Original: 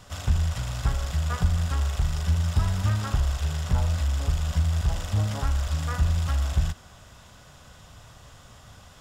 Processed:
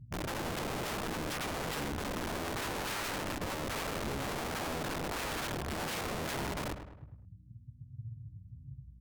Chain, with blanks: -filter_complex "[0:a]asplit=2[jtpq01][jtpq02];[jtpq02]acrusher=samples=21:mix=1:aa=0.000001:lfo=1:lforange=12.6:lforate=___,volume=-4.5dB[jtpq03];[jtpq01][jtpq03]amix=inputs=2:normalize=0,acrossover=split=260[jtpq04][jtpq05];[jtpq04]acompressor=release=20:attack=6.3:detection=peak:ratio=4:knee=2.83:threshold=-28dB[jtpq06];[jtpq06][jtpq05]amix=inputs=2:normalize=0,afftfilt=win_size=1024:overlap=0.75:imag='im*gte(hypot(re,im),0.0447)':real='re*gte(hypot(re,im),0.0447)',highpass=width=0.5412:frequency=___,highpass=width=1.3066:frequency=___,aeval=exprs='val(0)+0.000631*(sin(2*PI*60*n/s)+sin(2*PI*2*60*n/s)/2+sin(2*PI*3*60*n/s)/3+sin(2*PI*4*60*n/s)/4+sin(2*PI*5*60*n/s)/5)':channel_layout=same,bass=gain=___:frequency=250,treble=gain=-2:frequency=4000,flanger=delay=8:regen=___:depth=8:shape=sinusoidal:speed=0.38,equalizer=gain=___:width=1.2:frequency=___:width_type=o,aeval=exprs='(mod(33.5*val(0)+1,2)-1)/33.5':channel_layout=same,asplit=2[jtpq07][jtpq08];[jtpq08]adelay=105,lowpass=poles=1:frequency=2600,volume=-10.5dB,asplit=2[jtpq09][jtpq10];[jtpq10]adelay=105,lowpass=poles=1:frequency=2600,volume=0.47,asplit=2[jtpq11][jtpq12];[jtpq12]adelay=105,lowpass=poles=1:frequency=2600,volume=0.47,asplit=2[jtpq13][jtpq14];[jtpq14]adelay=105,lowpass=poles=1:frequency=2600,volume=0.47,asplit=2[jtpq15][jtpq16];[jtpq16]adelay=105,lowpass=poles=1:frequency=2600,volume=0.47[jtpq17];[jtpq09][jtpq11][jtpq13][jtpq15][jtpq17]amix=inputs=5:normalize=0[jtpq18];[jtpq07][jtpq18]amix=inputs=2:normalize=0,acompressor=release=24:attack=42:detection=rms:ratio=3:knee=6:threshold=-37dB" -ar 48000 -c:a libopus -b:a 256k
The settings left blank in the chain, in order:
1.7, 120, 120, 14, 29, 8.5, 2600